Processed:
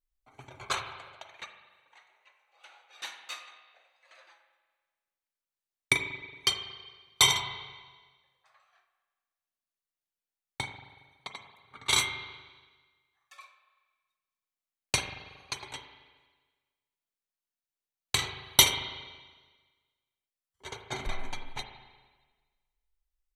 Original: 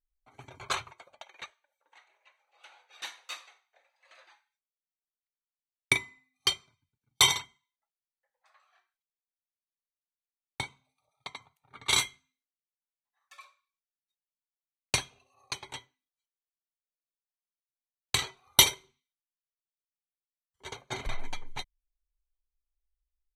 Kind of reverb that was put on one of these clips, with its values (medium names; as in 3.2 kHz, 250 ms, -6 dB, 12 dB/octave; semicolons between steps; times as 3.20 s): spring tank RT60 1.4 s, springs 37/46 ms, chirp 45 ms, DRR 6.5 dB